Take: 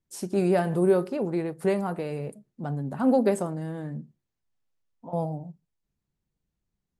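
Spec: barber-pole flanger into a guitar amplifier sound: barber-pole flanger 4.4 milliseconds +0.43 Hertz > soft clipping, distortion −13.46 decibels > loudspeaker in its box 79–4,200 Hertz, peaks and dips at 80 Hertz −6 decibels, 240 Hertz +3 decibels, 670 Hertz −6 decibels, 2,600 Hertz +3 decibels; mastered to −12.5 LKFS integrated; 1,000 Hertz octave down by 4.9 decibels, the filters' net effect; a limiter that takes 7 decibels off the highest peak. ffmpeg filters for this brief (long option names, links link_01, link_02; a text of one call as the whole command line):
ffmpeg -i in.wav -filter_complex "[0:a]equalizer=frequency=1000:width_type=o:gain=-3.5,alimiter=limit=-18dB:level=0:latency=1,asplit=2[link_01][link_02];[link_02]adelay=4.4,afreqshift=0.43[link_03];[link_01][link_03]amix=inputs=2:normalize=1,asoftclip=threshold=-26dB,highpass=79,equalizer=frequency=80:width_type=q:width=4:gain=-6,equalizer=frequency=240:width_type=q:width=4:gain=3,equalizer=frequency=670:width_type=q:width=4:gain=-6,equalizer=frequency=2600:width_type=q:width=4:gain=3,lowpass=frequency=4200:width=0.5412,lowpass=frequency=4200:width=1.3066,volume=23dB" out.wav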